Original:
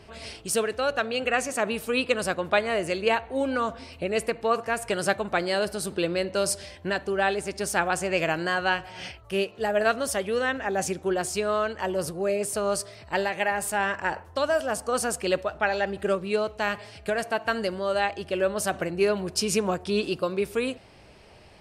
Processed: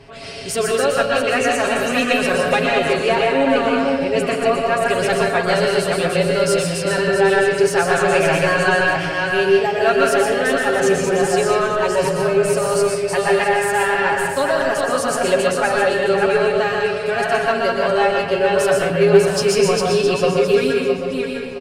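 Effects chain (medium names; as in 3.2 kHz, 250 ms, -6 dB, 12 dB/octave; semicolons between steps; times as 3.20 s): backward echo that repeats 332 ms, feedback 47%, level -4 dB; in parallel at -1 dB: saturation -21 dBFS, distortion -13 dB; on the sum: treble shelf 7.6 kHz -7.5 dB; comb 7.3 ms, depth 88%; reverberation RT60 0.80 s, pre-delay 119 ms, DRR 0.5 dB; trim -1.5 dB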